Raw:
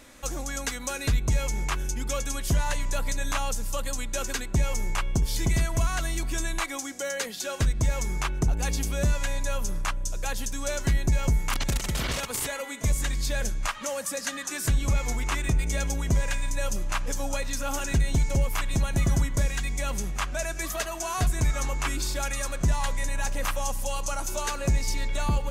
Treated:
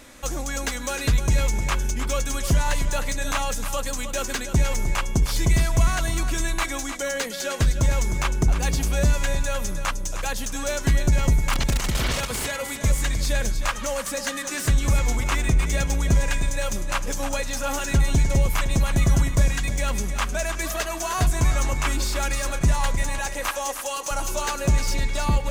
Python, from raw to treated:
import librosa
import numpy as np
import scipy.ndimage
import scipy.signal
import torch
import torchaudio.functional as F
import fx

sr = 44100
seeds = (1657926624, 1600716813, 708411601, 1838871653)

y = fx.highpass(x, sr, hz=290.0, slope=24, at=(23.18, 24.11))
y = fx.echo_feedback(y, sr, ms=308, feedback_pct=21, wet_db=-10)
y = fx.slew_limit(y, sr, full_power_hz=200.0)
y = y * 10.0 ** (4.0 / 20.0)